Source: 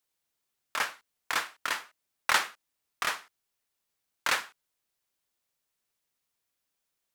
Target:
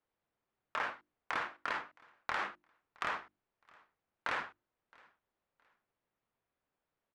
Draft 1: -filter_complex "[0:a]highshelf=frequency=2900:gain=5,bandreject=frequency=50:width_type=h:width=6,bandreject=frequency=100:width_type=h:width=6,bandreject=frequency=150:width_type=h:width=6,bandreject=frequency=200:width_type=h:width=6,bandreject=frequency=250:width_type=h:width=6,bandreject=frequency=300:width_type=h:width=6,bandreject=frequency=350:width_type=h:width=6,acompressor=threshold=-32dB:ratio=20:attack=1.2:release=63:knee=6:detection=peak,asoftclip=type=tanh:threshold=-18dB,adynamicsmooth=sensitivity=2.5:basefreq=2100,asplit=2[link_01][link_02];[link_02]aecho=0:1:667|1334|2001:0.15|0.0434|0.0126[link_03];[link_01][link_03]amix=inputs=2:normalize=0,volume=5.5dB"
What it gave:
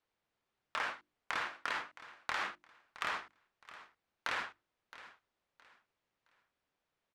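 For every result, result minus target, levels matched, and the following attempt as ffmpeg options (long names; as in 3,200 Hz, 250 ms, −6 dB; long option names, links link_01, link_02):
echo-to-direct +10 dB; 8,000 Hz band +6.0 dB
-filter_complex "[0:a]highshelf=frequency=2900:gain=5,bandreject=frequency=50:width_type=h:width=6,bandreject=frequency=100:width_type=h:width=6,bandreject=frequency=150:width_type=h:width=6,bandreject=frequency=200:width_type=h:width=6,bandreject=frequency=250:width_type=h:width=6,bandreject=frequency=300:width_type=h:width=6,bandreject=frequency=350:width_type=h:width=6,acompressor=threshold=-32dB:ratio=20:attack=1.2:release=63:knee=6:detection=peak,asoftclip=type=tanh:threshold=-18dB,adynamicsmooth=sensitivity=2.5:basefreq=2100,asplit=2[link_01][link_02];[link_02]aecho=0:1:667|1334:0.0473|0.0137[link_03];[link_01][link_03]amix=inputs=2:normalize=0,volume=5.5dB"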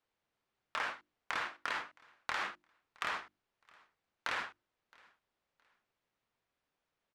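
8,000 Hz band +6.0 dB
-filter_complex "[0:a]highshelf=frequency=2900:gain=-7,bandreject=frequency=50:width_type=h:width=6,bandreject=frequency=100:width_type=h:width=6,bandreject=frequency=150:width_type=h:width=6,bandreject=frequency=200:width_type=h:width=6,bandreject=frequency=250:width_type=h:width=6,bandreject=frequency=300:width_type=h:width=6,bandreject=frequency=350:width_type=h:width=6,acompressor=threshold=-32dB:ratio=20:attack=1.2:release=63:knee=6:detection=peak,asoftclip=type=tanh:threshold=-18dB,adynamicsmooth=sensitivity=2.5:basefreq=2100,asplit=2[link_01][link_02];[link_02]aecho=0:1:667|1334:0.0473|0.0137[link_03];[link_01][link_03]amix=inputs=2:normalize=0,volume=5.5dB"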